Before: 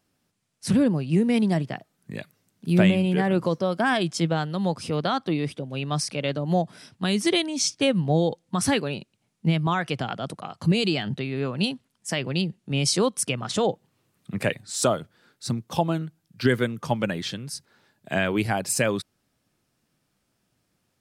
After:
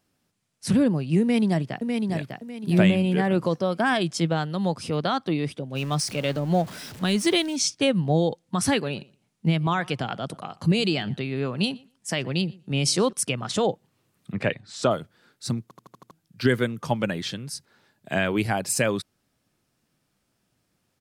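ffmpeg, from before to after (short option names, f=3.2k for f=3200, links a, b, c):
-filter_complex "[0:a]asplit=2[a][b];[b]afade=t=in:st=1.21:d=0.01,afade=t=out:st=2.14:d=0.01,aecho=0:1:600|1200|1800|2400:0.595662|0.178699|0.0536096|0.0160829[c];[a][c]amix=inputs=2:normalize=0,asettb=1/sr,asplit=3[d][e][f];[d]atrim=end=5.754[g];[e]atrim=start=5.75:end=7.56,asetpts=PTS-STARTPTS,afade=t=in:d=0.004:c=qsin,afade=t=out:st=1.806:d=0.004:c=qsin,aeval=exprs='val(0)+0.5*0.015*sgn(val(0))':c=same[h];[f]atrim=start=7.556[i];[g][h]acrossfade=d=0.004:c1=hsin:c2=qsin[j];[j][i]acrossfade=d=0.004:c1=qsin:c2=hsin,asettb=1/sr,asplit=3[k][l][m];[k]atrim=end=8.704[n];[l]atrim=start=8.7:end=13.13,asetpts=PTS-STARTPTS,afade=t=in:d=0.004:c=qsin,afade=t=out:st=4.426:d=0.004:c=qsin,asplit=2[o][p];[p]adelay=120,lowpass=f=3.5k:p=1,volume=-23.5dB,asplit=2[q][r];[r]adelay=120,lowpass=f=3.5k:p=1,volume=0.16[s];[o][q][s]amix=inputs=3:normalize=0,atrim=end_sample=195363[t];[m]atrim=start=13.126[u];[n][t]acrossfade=d=0.004:c1=hsin:c2=qsin[v];[v][u]acrossfade=d=0.004:c1=qsin:c2=hsin,asettb=1/sr,asplit=3[w][x][y];[w]atrim=end=14.324[z];[x]atrim=start=14.32:end=14.91,asetpts=PTS-STARTPTS,afade=t=in:d=0.004:c=qsin,afade=t=out:st=0.586:d=0.004:c=qsin,lowpass=4k[aa];[y]atrim=start=14.906[ab];[z][aa]acrossfade=d=0.004:c1=hsin:c2=qsin[ac];[ac][ab]acrossfade=d=0.004:c1=qsin:c2=hsin,asplit=7[ad][ae][af][ag][ah][ai][aj];[ad]atrim=end=15.712[ak];[ae]atrim=start=15.628:end=15.712[al];[af]atrim=start=15.628:end=15.712[am];[ag]atrim=start=15.628:end=15.712[an];[ah]atrim=start=15.628:end=15.712[ao];[ai]atrim=start=15.628:end=15.712[ap];[aj]atrim=start=16.108[aq];[ak][al]acrossfade=d=0.004:c1=hsin:c2=hsin[ar];[ar][am]acrossfade=d=0.004:c1=hsin:c2=hsin[as];[as][an]acrossfade=d=0.004:c1=hsin:c2=hsin[at];[at][ao]acrossfade=d=0.004:c1=hsin:c2=hsin[au];[au][ap]acrossfade=d=0.004:c1=hsin:c2=hsin[av];[av][aq]acrossfade=d=0.004:c1=hsin:c2=hsin"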